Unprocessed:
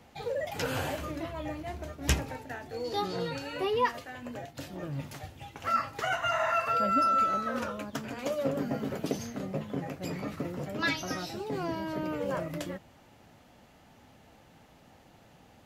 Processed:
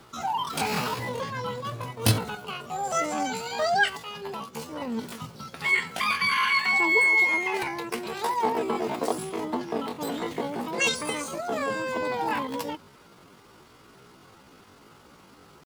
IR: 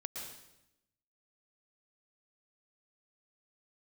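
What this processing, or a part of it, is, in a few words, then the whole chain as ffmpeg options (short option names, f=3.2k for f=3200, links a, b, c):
chipmunk voice: -filter_complex "[0:a]asettb=1/sr,asplit=3[a][b][c];[a]atrim=end=6.354[d];[b]atrim=start=6.35:end=7.64,asetpts=PTS-STARTPTS,afade=t=in:d=0.004:c=qsin,afade=t=out:st=1.286:d=0.004:c=qsin,highpass=f=94:w=0.5412,highpass=f=94:w=1.3066[e];[c]atrim=start=7.636[f];[d][e]acrossfade=d=0.004:c1=hsin:c2=qsin[g];[g][f]acrossfade=d=0.004:c1=qsin:c2=hsin,asetrate=72056,aresample=44100,atempo=0.612027,volume=5dB"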